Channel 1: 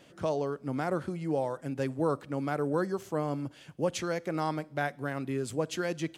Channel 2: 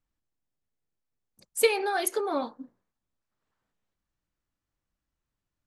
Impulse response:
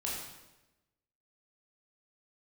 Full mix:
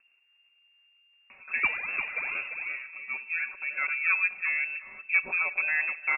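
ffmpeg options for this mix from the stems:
-filter_complex "[0:a]aecho=1:1:5.4:0.98,asoftclip=type=tanh:threshold=-14.5dB,highpass=120,adelay=1300,volume=0.5dB,asplit=3[a][b][c];[b]volume=-21dB[d];[c]volume=-18.5dB[e];[1:a]lowpass=5.9k,acrusher=samples=32:mix=1:aa=0.000001:lfo=1:lforange=32:lforate=2.2,volume=-5dB,asplit=3[f][g][h];[g]volume=-7.5dB[i];[h]apad=whole_len=329787[j];[a][j]sidechaincompress=threshold=-44dB:ratio=5:attack=8.2:release=1460[k];[2:a]atrim=start_sample=2205[l];[d][l]afir=irnorm=-1:irlink=0[m];[e][i]amix=inputs=2:normalize=0,aecho=0:1:347:1[n];[k][f][m][n]amix=inputs=4:normalize=0,acompressor=mode=upward:threshold=-49dB:ratio=2.5,lowpass=f=2.4k:t=q:w=0.5098,lowpass=f=2.4k:t=q:w=0.6013,lowpass=f=2.4k:t=q:w=0.9,lowpass=f=2.4k:t=q:w=2.563,afreqshift=-2800"

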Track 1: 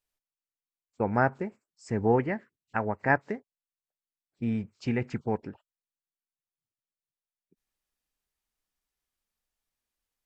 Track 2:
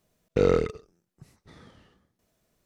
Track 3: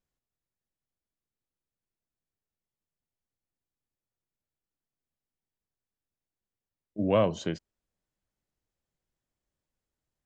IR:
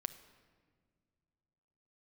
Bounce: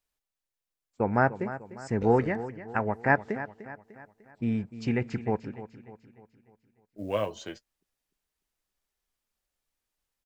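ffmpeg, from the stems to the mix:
-filter_complex "[0:a]volume=1dB,asplit=3[a][b][c];[b]volume=-14dB[d];[1:a]adelay=1650,volume=-12dB[e];[2:a]equalizer=f=170:t=o:w=1.8:g=-11.5,acrusher=bits=8:mode=log:mix=0:aa=0.000001,flanger=delay=4.3:depth=6.4:regen=37:speed=0.22:shape=triangular,volume=1dB[f];[c]apad=whole_len=190047[g];[e][g]sidechaincompress=threshold=-28dB:ratio=8:attack=7:release=128[h];[d]aecho=0:1:299|598|897|1196|1495|1794|2093:1|0.47|0.221|0.104|0.0488|0.0229|0.0108[i];[a][h][f][i]amix=inputs=4:normalize=0"

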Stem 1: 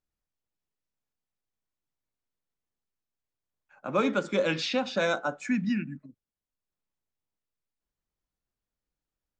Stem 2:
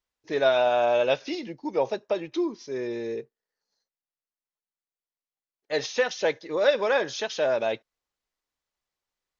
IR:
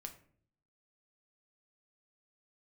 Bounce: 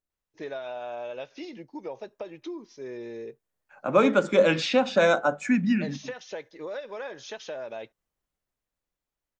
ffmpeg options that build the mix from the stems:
-filter_complex "[0:a]equalizer=f=600:t=o:w=0.77:g=3.5,bandreject=f=50:t=h:w=6,bandreject=f=100:t=h:w=6,bandreject=f=150:t=h:w=6,bandreject=f=200:t=h:w=6,dynaudnorm=f=390:g=9:m=8dB,volume=-3dB[a];[1:a]acompressor=threshold=-28dB:ratio=5,adelay=100,volume=-5.5dB[b];[a][b]amix=inputs=2:normalize=0,equalizer=f=4.6k:w=1.5:g=-4"

